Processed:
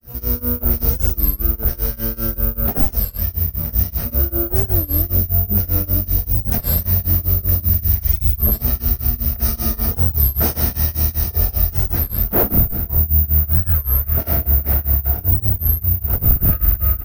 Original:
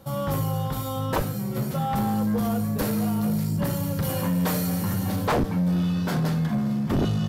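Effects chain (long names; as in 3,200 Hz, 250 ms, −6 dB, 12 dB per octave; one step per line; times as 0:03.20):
thirty-one-band graphic EQ 1,600 Hz +7 dB, 3,150 Hz +5 dB, 8,000 Hz −4 dB
pitch-shifted copies added +12 semitones −15 dB
on a send: single-tap delay 115 ms −19 dB
on the sum: granular cloud 95 ms, grains 12 per second, spray 16 ms, pitch spread up and down by 0 semitones
in parallel at −3 dB: brickwall limiter −22.5 dBFS, peak gain reduction 8 dB
on the sum: wrong playback speed 78 rpm record played at 33 rpm
floating-point word with a short mantissa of 4 bits
bad sample-rate conversion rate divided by 3×, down none, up zero stuff
low-shelf EQ 110 Hz +8.5 dB
wow of a warped record 33 1/3 rpm, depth 250 cents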